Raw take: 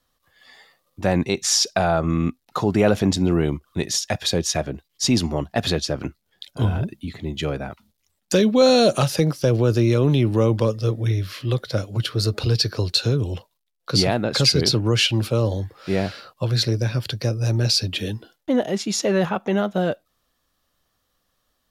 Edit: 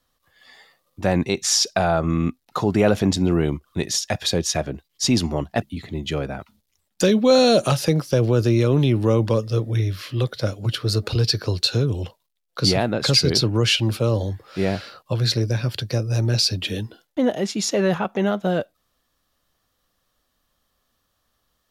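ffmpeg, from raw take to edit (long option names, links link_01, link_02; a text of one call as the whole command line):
ffmpeg -i in.wav -filter_complex "[0:a]asplit=2[link_01][link_02];[link_01]atrim=end=5.622[link_03];[link_02]atrim=start=6.928[link_04];[link_03][link_04]acrossfade=duration=0.004:curve1=hsin:curve2=hsin" out.wav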